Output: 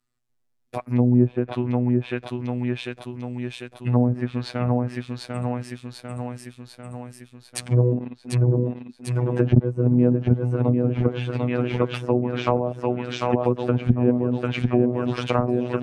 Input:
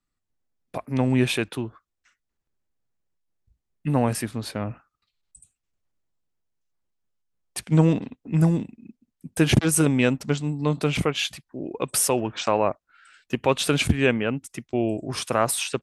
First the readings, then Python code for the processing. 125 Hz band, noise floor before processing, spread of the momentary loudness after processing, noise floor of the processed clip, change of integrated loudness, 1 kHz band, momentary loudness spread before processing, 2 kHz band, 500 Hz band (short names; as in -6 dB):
+4.5 dB, -81 dBFS, 15 LU, -60 dBFS, +0.5 dB, -0.5 dB, 14 LU, -5.5 dB, +2.5 dB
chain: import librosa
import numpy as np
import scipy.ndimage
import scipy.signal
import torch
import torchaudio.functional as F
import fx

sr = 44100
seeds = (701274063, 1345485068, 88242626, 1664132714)

y = fx.echo_feedback(x, sr, ms=746, feedback_pct=58, wet_db=-4.5)
y = fx.robotise(y, sr, hz=123.0)
y = fx.env_lowpass_down(y, sr, base_hz=450.0, full_db=-18.5)
y = y * 10.0 ** (4.5 / 20.0)